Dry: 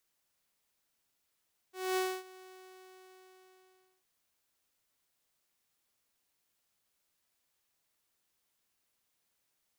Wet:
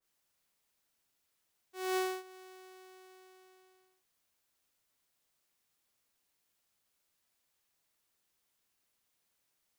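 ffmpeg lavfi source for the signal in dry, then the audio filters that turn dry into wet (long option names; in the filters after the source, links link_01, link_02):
-f lavfi -i "aevalsrc='0.0501*(2*mod(373*t,1)-1)':duration=2.31:sample_rate=44100,afade=type=in:duration=0.236,afade=type=out:start_time=0.236:duration=0.263:silence=0.075,afade=type=out:start_time=0.71:duration=1.6"
-af "adynamicequalizer=threshold=0.00398:dfrequency=1800:dqfactor=0.7:tfrequency=1800:tqfactor=0.7:attack=5:release=100:ratio=0.375:range=2:mode=cutabove:tftype=highshelf"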